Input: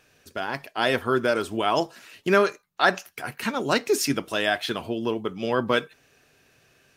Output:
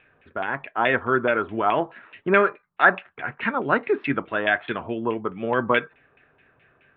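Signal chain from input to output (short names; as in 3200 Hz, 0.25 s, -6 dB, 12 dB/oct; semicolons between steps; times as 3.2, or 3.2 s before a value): LFO low-pass saw down 4.7 Hz 970–2500 Hz; Chebyshev low-pass 3700 Hz, order 5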